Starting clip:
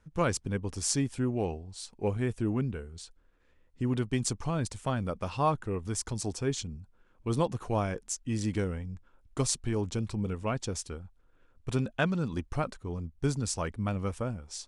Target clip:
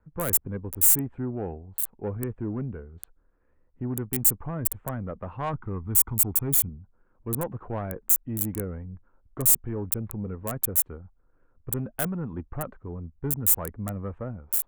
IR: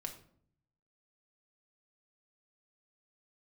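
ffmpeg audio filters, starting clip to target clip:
-filter_complex "[0:a]asettb=1/sr,asplit=3[link_01][link_02][link_03];[link_01]atrim=end=5.534[link_04];[link_02]atrim=start=5.53:end=6.69,asetpts=PTS-STARTPTS,afade=type=in:duration=0.004:curve=qsin,afade=type=out:start_time=1.156:duration=0.004:curve=qsin,aecho=1:1:0.9:0.78,atrim=end_sample=51156[link_05];[link_03]atrim=start=6.686[link_06];[link_04][link_05]acrossfade=duration=0.004:curve1=hsin:curve2=qsin[link_07];[link_07][link_06]acrossfade=duration=0.004:curve1=qsin:curve2=hsin,acrossover=split=360|950|1700[link_08][link_09][link_10][link_11];[link_11]acrusher=bits=3:dc=4:mix=0:aa=0.000001[link_12];[link_08][link_09][link_10][link_12]amix=inputs=4:normalize=0,asoftclip=type=tanh:threshold=-22dB,aexciter=amount=6.3:drive=9.4:freq=7600"

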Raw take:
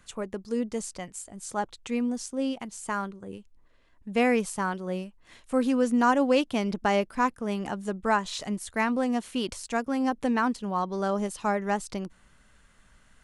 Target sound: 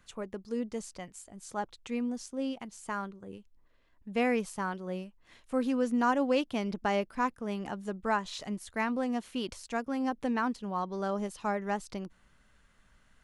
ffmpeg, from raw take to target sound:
ffmpeg -i in.wav -af "equalizer=frequency=8600:width=1.5:gain=-5,volume=-5dB" out.wav

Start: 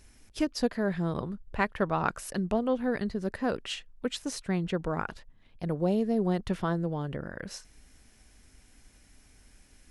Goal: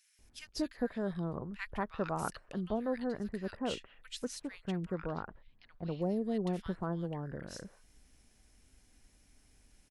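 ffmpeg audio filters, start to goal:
ffmpeg -i in.wav -filter_complex "[0:a]asettb=1/sr,asplit=3[link_01][link_02][link_03];[link_01]atrim=end=4.944[link_04];[link_02]atrim=start=4.94:end=6.02,asetpts=PTS-STARTPTS,afade=type=in:duration=0.004:curve=qsin,afade=type=out:start_time=1.076:duration=0.004:curve=qsin,lowpass=frequency=5000:width=0.5412,lowpass=frequency=5000:width=1.3066[link_05];[link_03]atrim=start=6.016[link_06];[link_04][link_05]acrossfade=duration=0.004:curve1=hsin:curve2=qsin[link_07];[link_07][link_06]acrossfade=duration=0.004:curve1=qsin:curve2=hsin,acrossover=split=1600[link_08][link_09];[link_08]adelay=190[link_10];[link_10][link_09]amix=inputs=2:normalize=0,volume=-6.5dB" out.wav

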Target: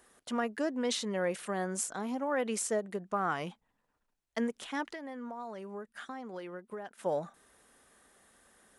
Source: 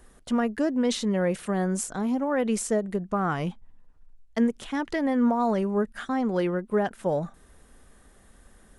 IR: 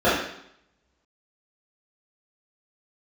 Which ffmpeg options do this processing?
-filter_complex "[0:a]highpass=frequency=550:poles=1,asplit=3[link_01][link_02][link_03];[link_01]afade=type=out:start_time=4.9:duration=0.02[link_04];[link_02]acompressor=threshold=-39dB:ratio=4,afade=type=in:start_time=4.9:duration=0.02,afade=type=out:start_time=6.97:duration=0.02[link_05];[link_03]afade=type=in:start_time=6.97:duration=0.02[link_06];[link_04][link_05][link_06]amix=inputs=3:normalize=0,volume=-2.5dB"

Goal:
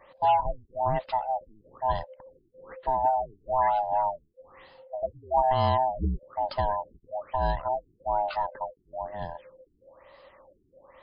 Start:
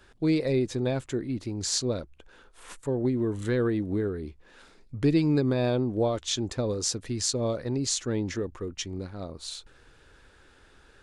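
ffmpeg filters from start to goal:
ffmpeg -i in.wav -af "afftfilt=real='real(if(lt(b,1008),b+24*(1-2*mod(floor(b/24),2)),b),0)':imag='imag(if(lt(b,1008),b+24*(1-2*mod(floor(b/24),2)),b),0)':win_size=2048:overlap=0.75,afftfilt=real='re*lt(b*sr/1024,410*pow(5200/410,0.5+0.5*sin(2*PI*1.1*pts/sr)))':imag='im*lt(b*sr/1024,410*pow(5200/410,0.5+0.5*sin(2*PI*1.1*pts/sr)))':win_size=1024:overlap=0.75,volume=2dB" out.wav

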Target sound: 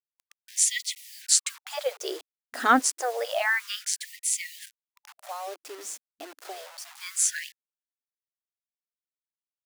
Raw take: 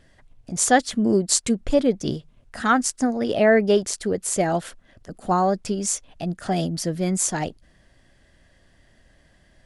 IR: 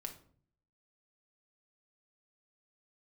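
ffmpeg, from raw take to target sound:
-filter_complex "[0:a]asplit=3[link_01][link_02][link_03];[link_01]afade=type=out:start_time=4.64:duration=0.02[link_04];[link_02]acompressor=threshold=-46dB:ratio=2,afade=type=in:start_time=4.64:duration=0.02,afade=type=out:start_time=6.99:duration=0.02[link_05];[link_03]afade=type=in:start_time=6.99:duration=0.02[link_06];[link_04][link_05][link_06]amix=inputs=3:normalize=0,acrusher=bits=6:mix=0:aa=0.000001,afftfilt=real='re*gte(b*sr/1024,240*pow(1900/240,0.5+0.5*sin(2*PI*0.29*pts/sr)))':imag='im*gte(b*sr/1024,240*pow(1900/240,0.5+0.5*sin(2*PI*0.29*pts/sr)))':win_size=1024:overlap=0.75"

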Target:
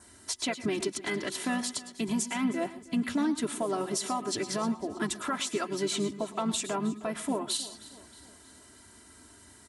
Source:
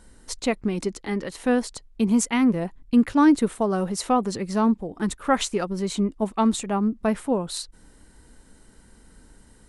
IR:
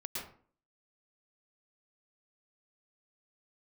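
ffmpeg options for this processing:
-filter_complex "[0:a]adynamicequalizer=threshold=0.002:dfrequency=3400:dqfactor=5.6:tfrequency=3400:tqfactor=5.6:attack=5:release=100:ratio=0.375:range=2:mode=boostabove:tftype=bell,highpass=frequency=90:width=0.5412,highpass=frequency=90:width=1.3066,equalizer=frequency=290:width_type=o:width=2.7:gain=-6,aecho=1:1:3:0.92,acompressor=threshold=-27dB:ratio=2.5,alimiter=limit=-23dB:level=0:latency=1:release=114,asplit=3[link_01][link_02][link_03];[link_02]asetrate=33038,aresample=44100,atempo=1.33484,volume=-13dB[link_04];[link_03]asetrate=35002,aresample=44100,atempo=1.25992,volume=-16dB[link_05];[link_01][link_04][link_05]amix=inputs=3:normalize=0,aecho=1:1:315|630|945|1260:0.112|0.0572|0.0292|0.0149,asplit=2[link_06][link_07];[1:a]atrim=start_sample=2205,afade=type=out:start_time=0.18:duration=0.01,atrim=end_sample=8379,highshelf=frequency=4300:gain=7.5[link_08];[link_07][link_08]afir=irnorm=-1:irlink=0,volume=-11dB[link_09];[link_06][link_09]amix=inputs=2:normalize=0"

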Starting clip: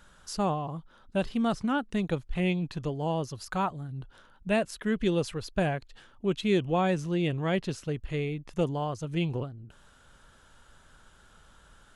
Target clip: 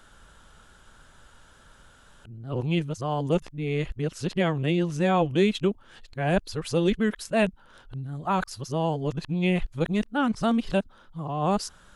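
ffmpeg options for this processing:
ffmpeg -i in.wav -af "areverse,volume=3.5dB" out.wav

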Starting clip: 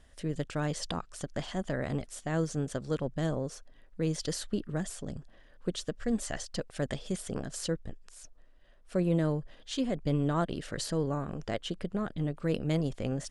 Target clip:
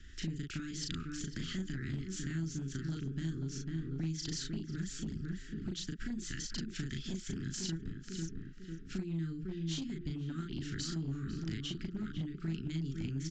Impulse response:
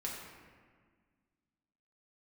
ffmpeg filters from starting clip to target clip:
-filter_complex "[0:a]asuperstop=centerf=720:order=12:qfactor=0.78,asplit=2[link_01][link_02];[link_02]adelay=497,lowpass=frequency=1700:poles=1,volume=-9.5dB,asplit=2[link_03][link_04];[link_04]adelay=497,lowpass=frequency=1700:poles=1,volume=0.4,asplit=2[link_05][link_06];[link_06]adelay=497,lowpass=frequency=1700:poles=1,volume=0.4,asplit=2[link_07][link_08];[link_08]adelay=497,lowpass=frequency=1700:poles=1,volume=0.4[link_09];[link_03][link_05][link_07][link_09]amix=inputs=4:normalize=0[link_10];[link_01][link_10]amix=inputs=2:normalize=0,acompressor=threshold=-40dB:ratio=8,asplit=2[link_11][link_12];[link_12]adelay=37,volume=-2.5dB[link_13];[link_11][link_13]amix=inputs=2:normalize=0,aresample=16000,aeval=exprs='clip(val(0),-1,0.0133)':channel_layout=same,aresample=44100,acrossover=split=220|3000[link_14][link_15][link_16];[link_15]acompressor=threshold=-49dB:ratio=6[link_17];[link_14][link_17][link_16]amix=inputs=3:normalize=0,volume=5dB"

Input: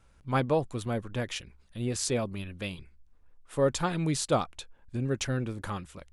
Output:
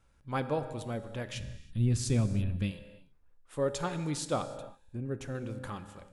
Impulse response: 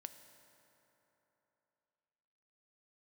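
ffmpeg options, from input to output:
-filter_complex "[0:a]asettb=1/sr,asplit=3[link_01][link_02][link_03];[link_01]atrim=end=4.424[link_04];[link_02]atrim=start=4.42:end=5.35,asetpts=PTS-STARTPTS,afade=type=in:duration=0.004:curve=qsin,afade=type=out:start_time=0.926:duration=0.004:curve=qsin,equalizer=frequency=4600:width=0.52:gain=-12.5[link_05];[link_03]atrim=start=5.346[link_06];[link_04][link_05]acrossfade=duration=0.004:curve1=hsin:curve2=qsin[link_07];[link_07][link_06]acrossfade=duration=0.004:curve1=qsin:curve2=hsin[link_08];[1:a]atrim=start_sample=2205,afade=type=out:start_time=0.36:duration=0.01,atrim=end_sample=16317,asetrate=41013,aresample=44100[link_09];[link_08][link_09]afir=irnorm=-1:irlink=0,asplit=3[link_10][link_11][link_12];[link_10]afade=type=out:start_time=1.33:duration=0.02[link_13];[link_11]asubboost=boost=10.5:cutoff=210,afade=type=in:start_time=1.33:duration=0.02,afade=type=out:start_time=2.7:duration=0.02[link_14];[link_12]afade=type=in:start_time=2.7:duration=0.02[link_15];[link_13][link_14][link_15]amix=inputs=3:normalize=0"

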